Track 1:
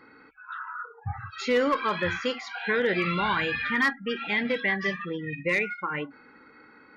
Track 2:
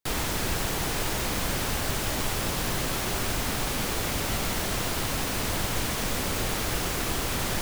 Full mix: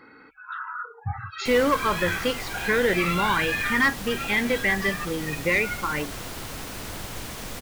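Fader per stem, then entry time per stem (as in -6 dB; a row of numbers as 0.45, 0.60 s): +3.0, -7.0 dB; 0.00, 1.40 s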